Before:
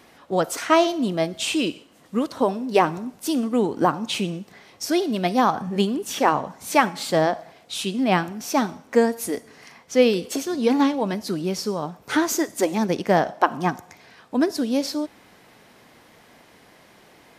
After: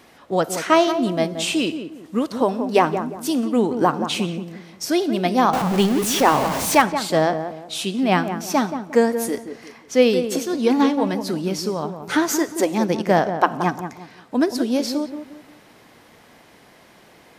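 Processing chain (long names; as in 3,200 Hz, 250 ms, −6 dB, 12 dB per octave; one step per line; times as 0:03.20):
0:05.53–0:06.82: converter with a step at zero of −22.5 dBFS
feedback echo with a low-pass in the loop 177 ms, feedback 35%, low-pass 1,200 Hz, level −8 dB
level +1.5 dB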